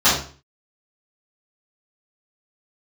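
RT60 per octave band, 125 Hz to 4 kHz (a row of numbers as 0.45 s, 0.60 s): 0.50 s, 0.45 s, 0.40 s, 0.40 s, 0.40 s, 0.35 s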